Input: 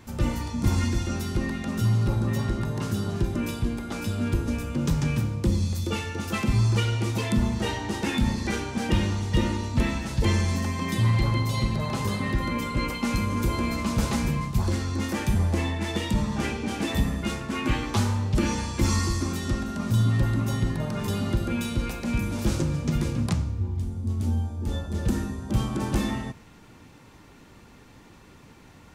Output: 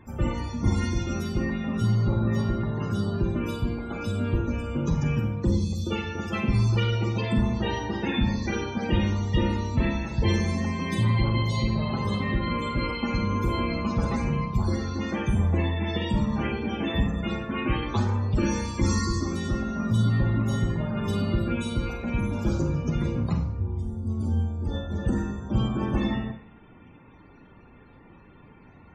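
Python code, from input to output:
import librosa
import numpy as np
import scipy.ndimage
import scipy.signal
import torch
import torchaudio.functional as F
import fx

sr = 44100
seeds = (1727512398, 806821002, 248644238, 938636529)

y = fx.spec_topn(x, sr, count=64)
y = fx.rev_schroeder(y, sr, rt60_s=0.46, comb_ms=32, drr_db=6.0)
y = y * librosa.db_to_amplitude(-1.0)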